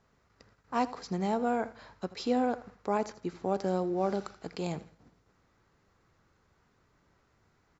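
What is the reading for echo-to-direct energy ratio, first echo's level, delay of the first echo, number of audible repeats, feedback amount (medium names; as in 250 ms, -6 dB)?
-17.0 dB, -17.5 dB, 81 ms, 2, 31%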